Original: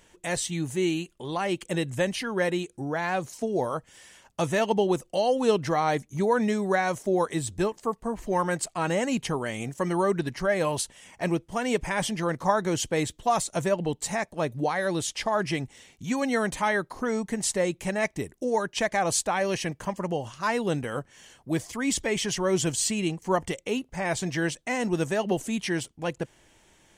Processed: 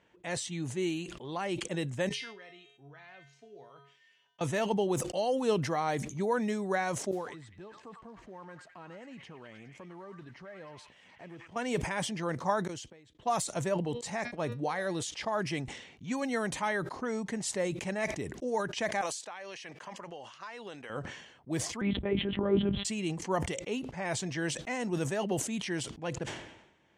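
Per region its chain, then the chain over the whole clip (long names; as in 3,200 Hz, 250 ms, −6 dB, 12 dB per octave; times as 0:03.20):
0:02.09–0:04.41: meter weighting curve D + downward compressor 1.5 to 1, threshold −32 dBFS + tuned comb filter 140 Hz, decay 0.54 s, harmonics odd, mix 90%
0:07.11–0:11.56: downward compressor 3 to 1, threshold −43 dBFS + noise that follows the level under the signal 24 dB + echo through a band-pass that steps 102 ms, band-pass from 1,500 Hz, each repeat 0.7 octaves, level −4.5 dB
0:12.67–0:13.15: high-shelf EQ 4,600 Hz +7.5 dB + gate with flip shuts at −20 dBFS, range −30 dB
0:13.74–0:15.03: hum removal 239.5 Hz, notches 24 + downward expander −38 dBFS + one half of a high-frequency compander decoder only
0:19.01–0:20.90: high-pass filter 480 Hz 6 dB per octave + spectral tilt +2 dB per octave + downward compressor 10 to 1, threshold −32 dBFS
0:21.81–0:22.85: spectral tilt −3.5 dB per octave + one-pitch LPC vocoder at 8 kHz 200 Hz + one half of a high-frequency compander decoder only
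whole clip: high-pass filter 88 Hz; low-pass that shuts in the quiet parts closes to 2,800 Hz, open at −21 dBFS; level that may fall only so fast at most 65 dB per second; level −6.5 dB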